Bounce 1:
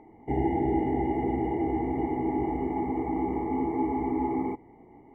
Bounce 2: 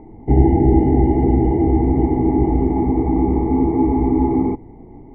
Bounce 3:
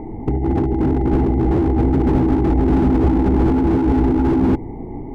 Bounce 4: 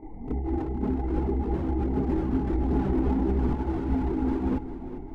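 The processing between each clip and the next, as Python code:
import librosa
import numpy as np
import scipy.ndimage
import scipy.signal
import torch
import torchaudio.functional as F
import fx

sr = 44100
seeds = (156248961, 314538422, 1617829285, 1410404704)

y1 = fx.tilt_eq(x, sr, slope=-4.0)
y1 = y1 * librosa.db_to_amplitude(5.0)
y2 = fx.over_compress(y1, sr, threshold_db=-20.0, ratio=-1.0)
y2 = fx.slew_limit(y2, sr, full_power_hz=35.0)
y2 = y2 * librosa.db_to_amplitude(5.5)
y3 = fx.chorus_voices(y2, sr, voices=4, hz=0.44, base_ms=28, depth_ms=3.1, mix_pct=70)
y3 = fx.echo_feedback(y3, sr, ms=400, feedback_pct=42, wet_db=-13.0)
y3 = y3 * librosa.db_to_amplitude(-9.0)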